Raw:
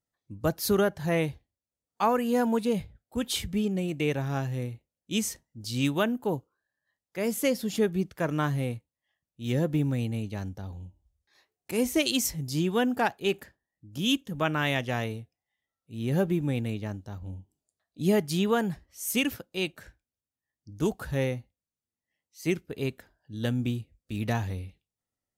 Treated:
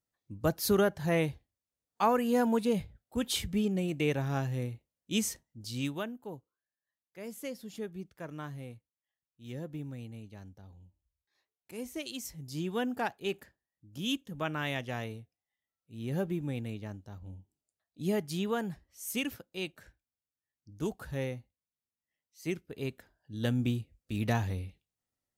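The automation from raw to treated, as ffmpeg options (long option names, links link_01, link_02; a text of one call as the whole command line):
ffmpeg -i in.wav -af "volume=11dB,afade=type=out:start_time=5.31:duration=0.84:silence=0.251189,afade=type=in:start_time=12.22:duration=0.53:silence=0.446684,afade=type=in:start_time=22.67:duration=0.96:silence=0.501187" out.wav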